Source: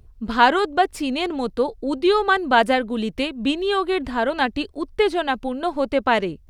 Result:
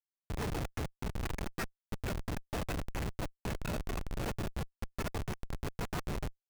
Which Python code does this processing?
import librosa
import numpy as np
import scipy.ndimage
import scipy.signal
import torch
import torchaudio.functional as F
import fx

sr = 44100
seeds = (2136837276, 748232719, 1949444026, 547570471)

p1 = fx.spec_gate(x, sr, threshold_db=-25, keep='weak')
p2 = fx.rider(p1, sr, range_db=4, speed_s=0.5)
p3 = p1 + (p2 * 10.0 ** (-1.0 / 20.0))
p4 = fx.freq_invert(p3, sr, carrier_hz=2600)
p5 = fx.notch_comb(p4, sr, f0_hz=260.0)
p6 = p5 + fx.echo_single(p5, sr, ms=256, db=-13.5, dry=0)
p7 = fx.schmitt(p6, sr, flips_db=-34.0)
y = p7 * 10.0 ** (5.5 / 20.0)